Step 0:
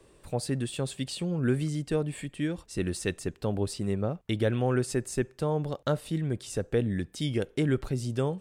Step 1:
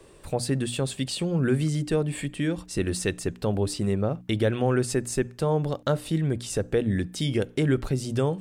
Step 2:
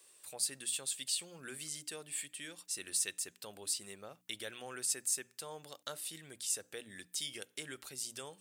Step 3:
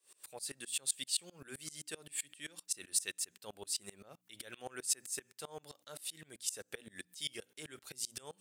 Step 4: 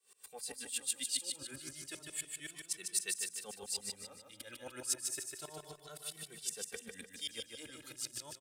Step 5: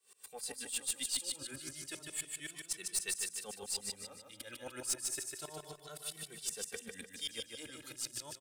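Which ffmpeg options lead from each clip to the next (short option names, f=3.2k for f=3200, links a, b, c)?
-filter_complex "[0:a]asplit=2[a][b];[b]alimiter=limit=-23.5dB:level=0:latency=1:release=226,volume=1dB[c];[a][c]amix=inputs=2:normalize=0,bandreject=f=60:t=h:w=6,bandreject=f=120:t=h:w=6,bandreject=f=180:t=h:w=6,bandreject=f=240:t=h:w=6,bandreject=f=300:t=h:w=6"
-af "aderivative"
-af "aeval=exprs='val(0)*pow(10,-26*if(lt(mod(-7.7*n/s,1),2*abs(-7.7)/1000),1-mod(-7.7*n/s,1)/(2*abs(-7.7)/1000),(mod(-7.7*n/s,1)-2*abs(-7.7)/1000)/(1-2*abs(-7.7)/1000))/20)':c=same,volume=6.5dB"
-filter_complex "[0:a]aecho=1:1:150|300|450|600|750:0.596|0.256|0.11|0.0474|0.0204,asplit=2[a][b];[b]adelay=2.2,afreqshift=0.31[c];[a][c]amix=inputs=2:normalize=1,volume=1.5dB"
-af "aeval=exprs='(tanh(25.1*val(0)+0.2)-tanh(0.2))/25.1':c=same,volume=2dB"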